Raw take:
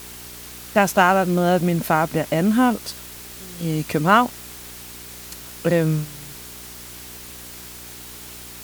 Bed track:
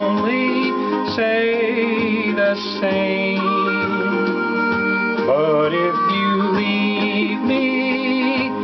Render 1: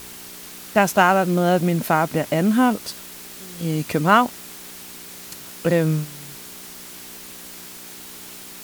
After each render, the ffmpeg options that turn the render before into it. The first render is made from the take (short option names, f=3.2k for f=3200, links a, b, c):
-af "bandreject=f=60:t=h:w=4,bandreject=f=120:t=h:w=4"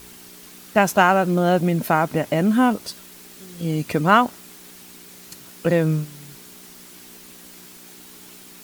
-af "afftdn=nr=6:nf=-39"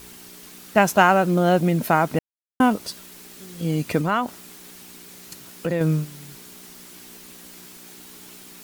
-filter_complex "[0:a]asettb=1/sr,asplit=3[a][b][c];[a]atrim=end=4.014[d];[b]atrim=start=4.01:end=5.81,asetpts=PTS-STARTPTS,afade=t=in:d=0.004:c=qsin,afade=t=out:st=1.796:d=0.004:c=qsin,acompressor=threshold=-23dB:ratio=2:attack=3.2:release=140:knee=1:detection=peak[e];[c]atrim=start=5.806[f];[d][e]acrossfade=d=0.004:c1=hsin:c2=qsin[g];[g][f]acrossfade=d=0.004:c1=qsin:c2=hsin,asplit=3[h][i][j];[h]atrim=end=2.19,asetpts=PTS-STARTPTS,afade=t=out:st=2.186:d=0.004:c=hsin[k];[i]atrim=start=2.19:end=2.6,asetpts=PTS-STARTPTS,volume=0[l];[j]atrim=start=2.6,asetpts=PTS-STARTPTS,afade=t=in:d=0.004:c=hsin[m];[k][l][m]concat=n=3:v=0:a=1"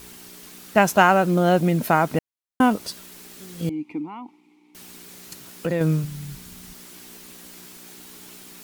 -filter_complex "[0:a]asettb=1/sr,asplit=3[a][b][c];[a]atrim=end=3.694[d];[b]atrim=start=3.69:end=4.75,asetpts=PTS-STARTPTS,afade=t=in:d=0.004:c=qsin,afade=t=out:st=1.056:d=0.004:c=qsin,asplit=3[e][f][g];[e]bandpass=f=300:t=q:w=8,volume=0dB[h];[f]bandpass=f=870:t=q:w=8,volume=-6dB[i];[g]bandpass=f=2.24k:t=q:w=8,volume=-9dB[j];[h][i][j]amix=inputs=3:normalize=0[k];[c]atrim=start=4.746[l];[d][k]acrossfade=d=0.004:c1=hsin:c2=qsin[m];[m][l]acrossfade=d=0.004:c1=qsin:c2=hsin,asplit=3[n][o][p];[n]afade=t=out:st=6.03:d=0.02[q];[o]asubboost=boost=6:cutoff=150,afade=t=in:st=6.03:d=0.02,afade=t=out:st=6.73:d=0.02[r];[p]afade=t=in:st=6.73:d=0.02[s];[q][r][s]amix=inputs=3:normalize=0"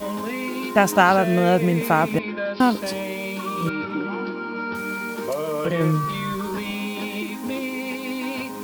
-filter_complex "[1:a]volume=-10dB[a];[0:a][a]amix=inputs=2:normalize=0"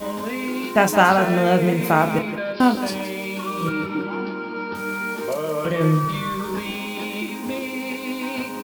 -filter_complex "[0:a]asplit=2[a][b];[b]adelay=32,volume=-8dB[c];[a][c]amix=inputs=2:normalize=0,asplit=2[d][e];[e]aecho=0:1:169|338|507:0.251|0.0804|0.0257[f];[d][f]amix=inputs=2:normalize=0"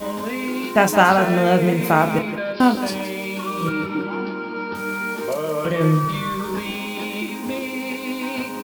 -af "volume=1dB,alimiter=limit=-1dB:level=0:latency=1"